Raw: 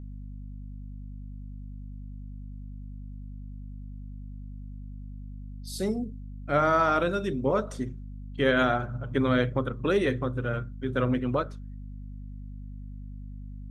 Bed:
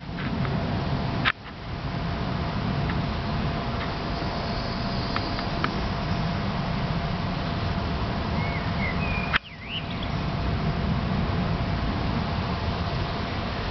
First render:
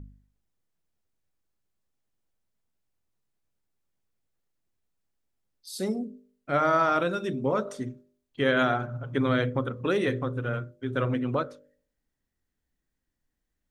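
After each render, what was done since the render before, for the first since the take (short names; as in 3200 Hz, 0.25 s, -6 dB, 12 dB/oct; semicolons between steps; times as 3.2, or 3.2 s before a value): de-hum 50 Hz, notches 12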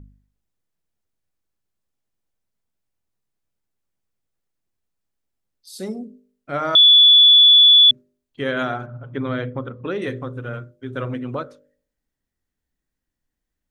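6.75–7.91 bleep 3440 Hz -7 dBFS; 8.86–10.02 air absorption 150 m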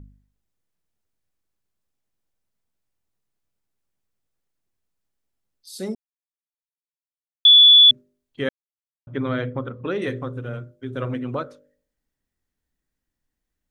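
5.95–7.45 mute; 8.49–9.07 mute; 10.28–11.02 dynamic EQ 1400 Hz, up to -6 dB, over -43 dBFS, Q 0.77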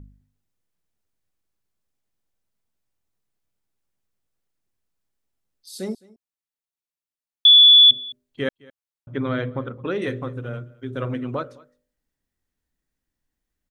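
echo 0.212 s -23.5 dB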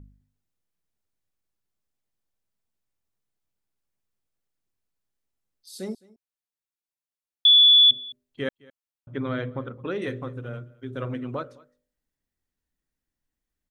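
gain -4 dB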